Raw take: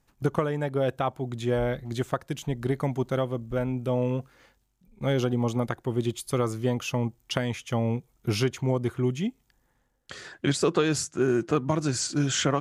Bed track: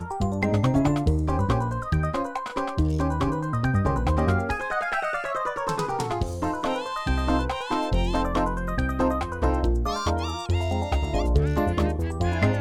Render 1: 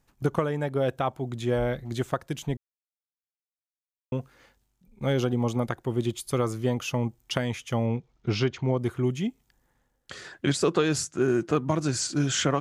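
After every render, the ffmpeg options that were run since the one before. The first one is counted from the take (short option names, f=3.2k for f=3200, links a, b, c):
-filter_complex "[0:a]asettb=1/sr,asplit=3[a][b][c];[a]atrim=end=7.864[d];[b]atrim=start=7.86:end=8.78,asetpts=PTS-STARTPTS,afade=t=in:d=0.004:c=qsin,afade=t=out:st=0.916:d=0.004:c=qsin,lowpass=f=5.4k:w=0.5412,lowpass=f=5.4k:w=1.3066[e];[c]atrim=start=8.776[f];[d][e]acrossfade=d=0.004:c1=hsin:c2=qsin[g];[g][f]acrossfade=d=0.004:c1=qsin:c2=hsin,asplit=3[h][i][j];[h]atrim=end=2.57,asetpts=PTS-STARTPTS,afade=t=out:st=2.566:d=0.004:c=hsin[k];[i]atrim=start=2.57:end=4.12,asetpts=PTS-STARTPTS,volume=0[l];[j]atrim=start=4.12,asetpts=PTS-STARTPTS,afade=t=in:d=0.004:c=hsin[m];[k][l][m]concat=n=3:v=0:a=1"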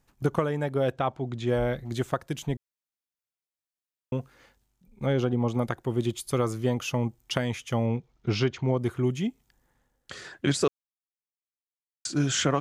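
-filter_complex "[0:a]asettb=1/sr,asplit=3[a][b][c];[a]atrim=end=0.924[d];[b]atrim=start=0.92:end=1.47,asetpts=PTS-STARTPTS,afade=t=in:d=0.004:c=qsin,afade=t=out:st=0.546:d=0.004:c=qsin,lowpass=5.6k[e];[c]atrim=start=1.466[f];[d][e]acrossfade=d=0.004:c1=hsin:c2=qsin[g];[g][f]acrossfade=d=0.004:c1=qsin:c2=hsin,asplit=3[h][i][j];[h]afade=t=out:st=5.05:d=0.02[k];[i]lowpass=f=2.6k:p=1,afade=t=in:st=5.05:d=0.02,afade=t=out:st=5.53:d=0.02[l];[j]afade=t=in:st=5.53:d=0.02[m];[k][l][m]amix=inputs=3:normalize=0,asplit=3[n][o][p];[n]atrim=end=10.68,asetpts=PTS-STARTPTS,afade=t=out:st=10.676:d=0.004:c=hsin[q];[o]atrim=start=10.68:end=12.05,asetpts=PTS-STARTPTS,volume=0[r];[p]atrim=start=12.05,asetpts=PTS-STARTPTS,afade=t=in:d=0.004:c=hsin[s];[q][r][s]concat=n=3:v=0:a=1"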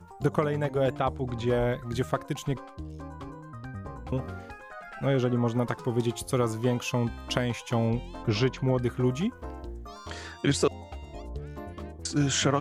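-filter_complex "[1:a]volume=-16.5dB[a];[0:a][a]amix=inputs=2:normalize=0"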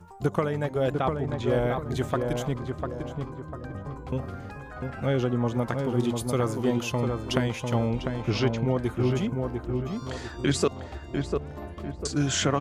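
-filter_complex "[0:a]asplit=2[a][b];[b]adelay=698,lowpass=f=1.5k:p=1,volume=-4dB,asplit=2[c][d];[d]adelay=698,lowpass=f=1.5k:p=1,volume=0.42,asplit=2[e][f];[f]adelay=698,lowpass=f=1.5k:p=1,volume=0.42,asplit=2[g][h];[h]adelay=698,lowpass=f=1.5k:p=1,volume=0.42,asplit=2[i][j];[j]adelay=698,lowpass=f=1.5k:p=1,volume=0.42[k];[a][c][e][g][i][k]amix=inputs=6:normalize=0"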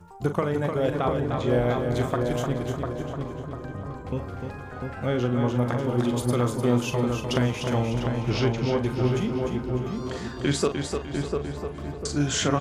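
-filter_complex "[0:a]asplit=2[a][b];[b]adelay=41,volume=-9dB[c];[a][c]amix=inputs=2:normalize=0,aecho=1:1:301|602|903|1204:0.501|0.185|0.0686|0.0254"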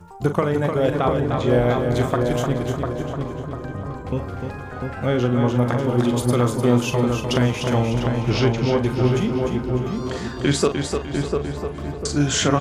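-af "volume=5dB,alimiter=limit=-3dB:level=0:latency=1"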